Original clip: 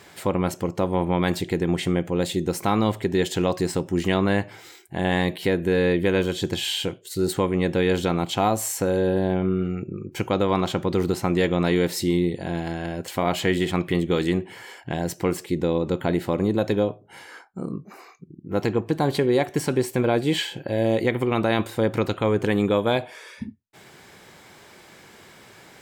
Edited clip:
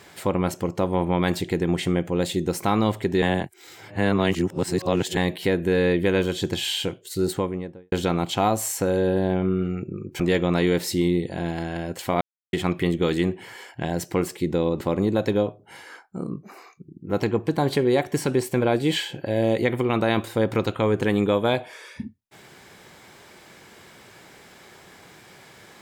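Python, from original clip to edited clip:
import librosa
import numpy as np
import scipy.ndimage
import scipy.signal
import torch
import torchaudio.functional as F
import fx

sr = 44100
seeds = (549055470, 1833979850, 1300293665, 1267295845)

y = fx.studio_fade_out(x, sr, start_s=7.17, length_s=0.75)
y = fx.edit(y, sr, fx.reverse_span(start_s=3.22, length_s=1.95),
    fx.cut(start_s=10.2, length_s=1.09),
    fx.silence(start_s=13.3, length_s=0.32),
    fx.cut(start_s=15.9, length_s=0.33), tone=tone)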